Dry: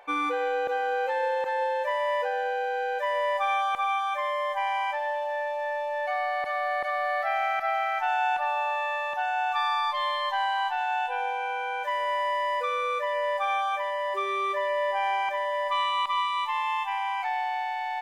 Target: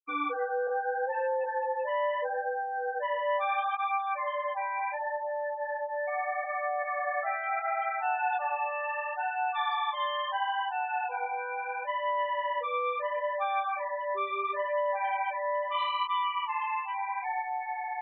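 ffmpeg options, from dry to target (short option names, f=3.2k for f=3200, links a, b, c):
-af "acontrast=23,afftfilt=real='re*gte(hypot(re,im),0.1)':imag='im*gte(hypot(re,im),0.1)':win_size=1024:overlap=0.75,flanger=delay=15:depth=7.3:speed=0.74,volume=-5.5dB"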